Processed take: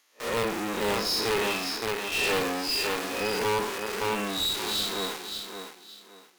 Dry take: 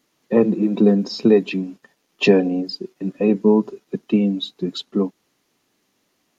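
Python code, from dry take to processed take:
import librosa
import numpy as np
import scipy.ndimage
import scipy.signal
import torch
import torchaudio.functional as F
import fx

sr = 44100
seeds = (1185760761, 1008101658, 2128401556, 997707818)

p1 = fx.spec_blur(x, sr, span_ms=158.0)
p2 = fx.quant_companded(p1, sr, bits=2)
p3 = p1 + (p2 * librosa.db_to_amplitude(-4.0))
p4 = scipy.signal.sosfilt(scipy.signal.butter(2, 980.0, 'highpass', fs=sr, output='sos'), p3)
p5 = p4 + fx.echo_feedback(p4, sr, ms=568, feedback_pct=25, wet_db=-9, dry=0)
p6 = fx.hpss(p5, sr, part='harmonic', gain_db=9)
p7 = fx.tube_stage(p6, sr, drive_db=25.0, bias=0.5)
p8 = fx.end_taper(p7, sr, db_per_s=120.0)
y = p8 * librosa.db_to_amplitude(2.0)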